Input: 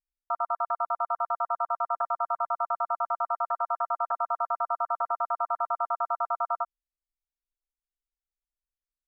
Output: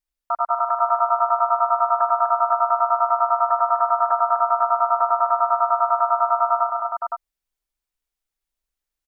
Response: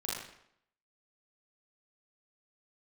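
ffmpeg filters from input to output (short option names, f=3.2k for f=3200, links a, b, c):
-af "aecho=1:1:86|197|246|288|516:0.299|0.299|0.501|0.2|0.668,volume=6dB"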